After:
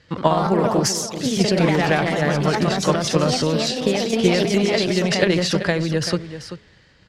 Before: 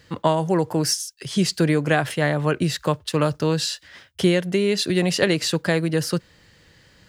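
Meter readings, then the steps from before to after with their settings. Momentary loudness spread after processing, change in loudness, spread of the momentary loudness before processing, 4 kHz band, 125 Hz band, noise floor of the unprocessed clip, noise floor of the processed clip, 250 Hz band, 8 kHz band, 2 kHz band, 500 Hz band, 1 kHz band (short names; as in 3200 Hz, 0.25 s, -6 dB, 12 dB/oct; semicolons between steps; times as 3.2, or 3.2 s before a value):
5 LU, +2.5 dB, 5 LU, +2.5 dB, +1.5 dB, -55 dBFS, -53 dBFS, +2.5 dB, +2.0 dB, +2.5 dB, +3.0 dB, +4.5 dB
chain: LPF 5400 Hz 12 dB/oct; echoes that change speed 86 ms, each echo +2 st, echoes 3; de-hum 211 Hz, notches 2; transient shaper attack +6 dB, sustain +10 dB; on a send: echo 0.386 s -12 dB; on the sum: gain -2.5 dB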